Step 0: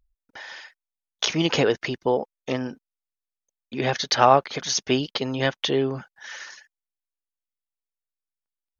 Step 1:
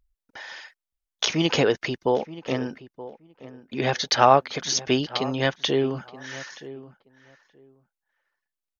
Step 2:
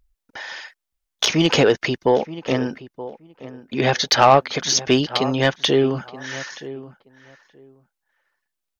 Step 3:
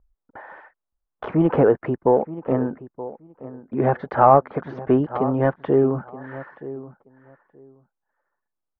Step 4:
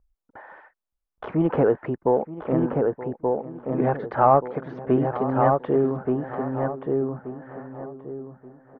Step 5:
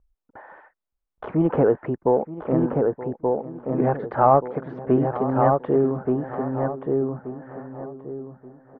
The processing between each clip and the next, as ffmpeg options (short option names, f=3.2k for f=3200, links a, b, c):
-filter_complex "[0:a]asplit=2[a][b];[b]adelay=925,lowpass=f=1.7k:p=1,volume=-16dB,asplit=2[c][d];[d]adelay=925,lowpass=f=1.7k:p=1,volume=0.17[e];[a][c][e]amix=inputs=3:normalize=0"
-af "acontrast=80,volume=-1dB"
-af "lowpass=f=1.3k:w=0.5412,lowpass=f=1.3k:w=1.3066"
-filter_complex "[0:a]asplit=2[a][b];[b]adelay=1179,lowpass=f=1.6k:p=1,volume=-3dB,asplit=2[c][d];[d]adelay=1179,lowpass=f=1.6k:p=1,volume=0.28,asplit=2[e][f];[f]adelay=1179,lowpass=f=1.6k:p=1,volume=0.28,asplit=2[g][h];[h]adelay=1179,lowpass=f=1.6k:p=1,volume=0.28[i];[a][c][e][g][i]amix=inputs=5:normalize=0,volume=-3.5dB"
-af "highshelf=f=2.5k:g=-9.5,volume=1.5dB"